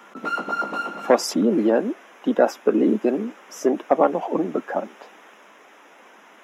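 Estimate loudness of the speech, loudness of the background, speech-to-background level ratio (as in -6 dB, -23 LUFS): -22.0 LUFS, -28.0 LUFS, 6.0 dB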